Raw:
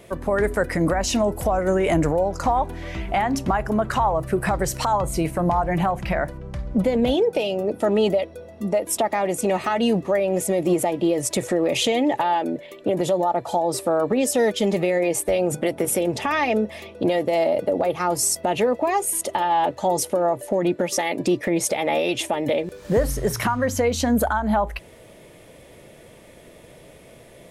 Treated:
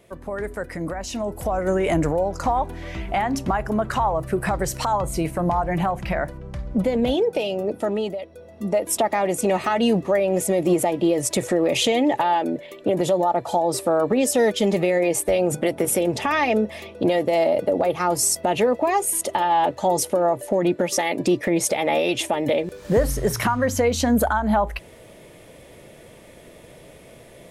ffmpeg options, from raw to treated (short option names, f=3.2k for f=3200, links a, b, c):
-af "volume=10dB,afade=t=in:st=1.14:d=0.54:silence=0.446684,afade=t=out:st=7.7:d=0.46:silence=0.354813,afade=t=in:st=8.16:d=0.66:silence=0.281838"